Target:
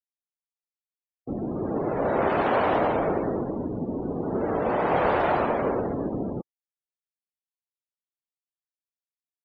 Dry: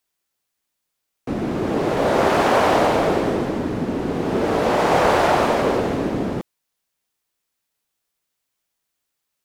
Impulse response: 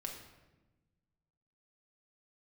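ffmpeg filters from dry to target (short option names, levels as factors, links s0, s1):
-af "afftdn=nr=31:nf=-28,volume=0.501"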